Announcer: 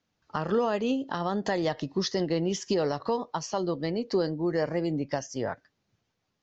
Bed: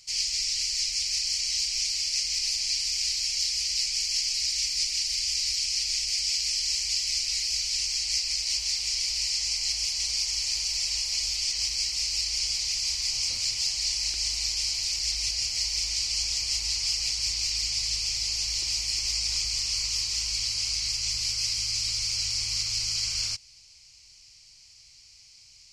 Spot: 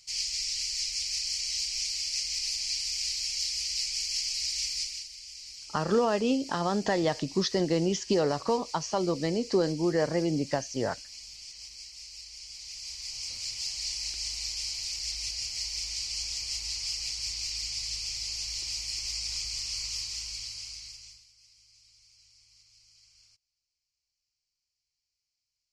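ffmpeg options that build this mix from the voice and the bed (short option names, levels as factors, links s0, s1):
-filter_complex "[0:a]adelay=5400,volume=1.12[s0];[1:a]volume=2.24,afade=t=out:st=4.72:d=0.38:silence=0.223872,afade=t=in:st=12.45:d=1.36:silence=0.281838,afade=t=out:st=19.94:d=1.32:silence=0.0501187[s1];[s0][s1]amix=inputs=2:normalize=0"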